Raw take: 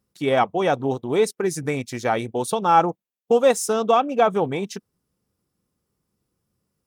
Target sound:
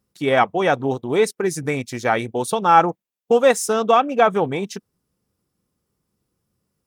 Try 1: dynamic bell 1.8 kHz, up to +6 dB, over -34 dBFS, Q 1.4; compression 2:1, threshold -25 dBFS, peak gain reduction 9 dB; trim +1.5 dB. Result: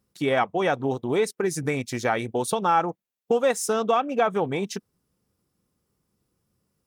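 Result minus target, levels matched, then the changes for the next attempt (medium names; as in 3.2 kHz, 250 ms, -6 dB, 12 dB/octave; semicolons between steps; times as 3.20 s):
compression: peak gain reduction +9 dB
remove: compression 2:1, threshold -25 dBFS, peak gain reduction 9 dB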